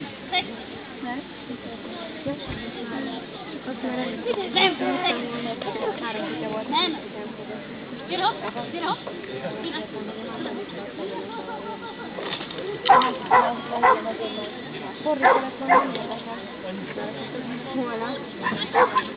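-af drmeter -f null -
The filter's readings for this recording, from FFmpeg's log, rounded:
Channel 1: DR: 15.5
Overall DR: 15.5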